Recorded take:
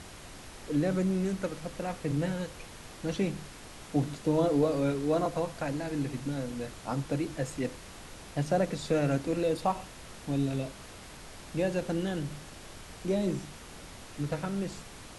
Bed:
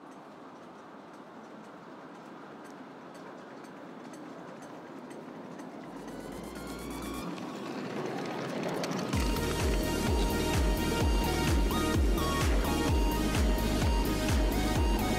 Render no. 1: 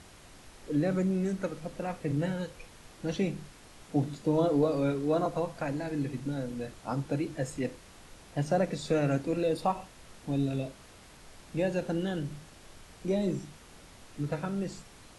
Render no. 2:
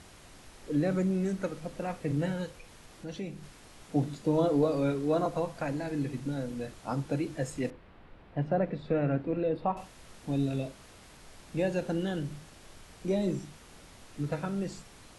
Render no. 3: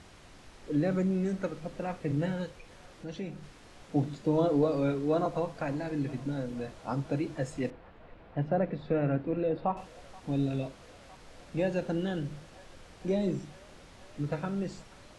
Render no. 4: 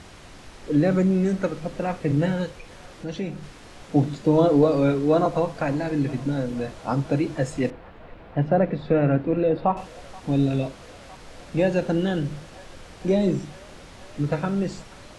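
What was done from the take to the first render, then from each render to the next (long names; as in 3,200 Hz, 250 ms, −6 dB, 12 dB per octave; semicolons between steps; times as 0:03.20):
noise reduction from a noise print 6 dB
0:02.51–0:03.43: downward compressor 1.5 to 1, threshold −48 dBFS; 0:07.70–0:09.77: high-frequency loss of the air 450 metres
high-frequency loss of the air 53 metres; delay with a band-pass on its return 479 ms, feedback 81%, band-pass 1,200 Hz, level −21.5 dB
level +8.5 dB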